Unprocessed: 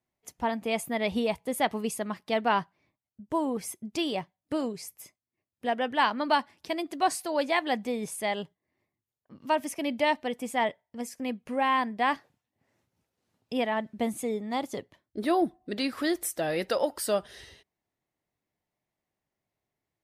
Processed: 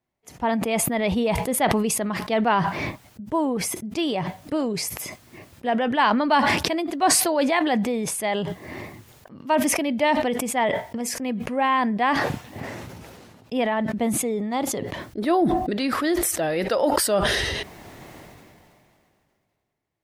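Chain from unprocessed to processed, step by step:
high-shelf EQ 4,300 Hz −7 dB
level that may fall only so fast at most 24 dB per second
level +4.5 dB

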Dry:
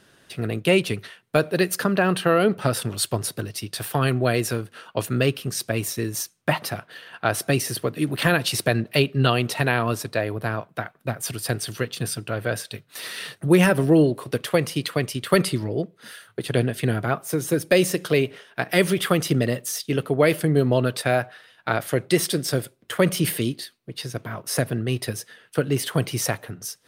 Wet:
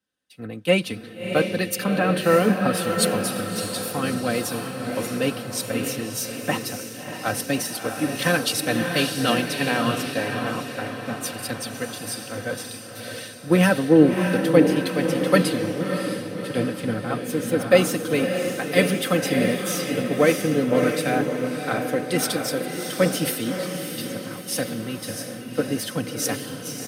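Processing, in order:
high-pass filter 76 Hz
low-shelf EQ 150 Hz +4.5 dB
comb filter 3.9 ms, depth 66%
feedback delay with all-pass diffusion 634 ms, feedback 63%, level −3 dB
multiband upward and downward expander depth 70%
level −4 dB

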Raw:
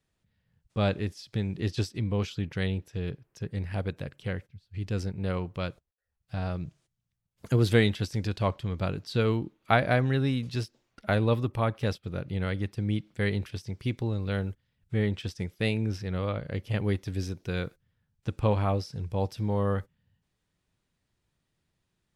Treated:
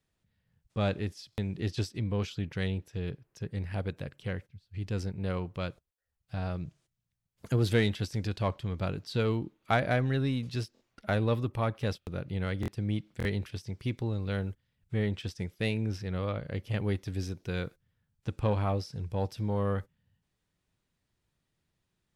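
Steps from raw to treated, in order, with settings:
in parallel at −3 dB: soft clipping −22 dBFS, distortion −13 dB
on the sum: buffer that repeats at 0:01.31/0:10.74/0:12.00/0:12.61/0:13.18, samples 1,024, times 2
level −6.5 dB

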